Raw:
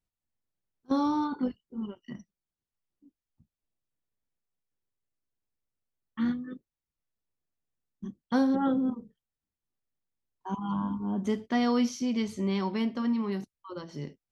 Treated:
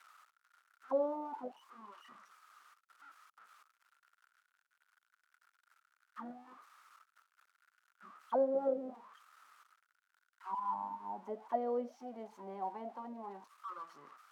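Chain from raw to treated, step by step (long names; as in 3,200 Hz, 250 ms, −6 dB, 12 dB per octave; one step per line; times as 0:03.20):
spike at every zero crossing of −23 dBFS
high-pass filter 180 Hz
high-shelf EQ 2,100 Hz −9.5 dB
envelope filter 570–1,500 Hz, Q 10, down, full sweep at −24 dBFS
level +8 dB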